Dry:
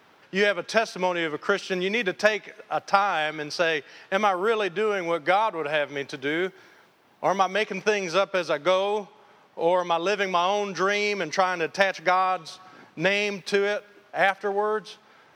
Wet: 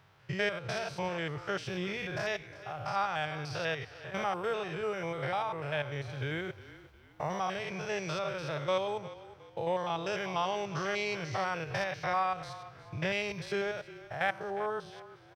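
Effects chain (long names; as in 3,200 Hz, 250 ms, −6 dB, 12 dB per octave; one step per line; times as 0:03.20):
spectrum averaged block by block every 100 ms
low shelf with overshoot 170 Hz +12.5 dB, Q 3
echo with shifted repeats 358 ms, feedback 37%, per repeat −31 Hz, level −16.5 dB
level −6.5 dB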